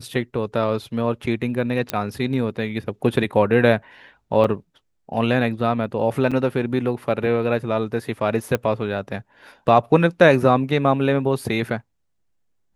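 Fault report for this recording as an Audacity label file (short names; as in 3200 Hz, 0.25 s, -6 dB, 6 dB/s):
1.900000	1.900000	pop -7 dBFS
4.440000	4.440000	gap 3.4 ms
6.310000	6.320000	gap 5.8 ms
8.550000	8.550000	pop -8 dBFS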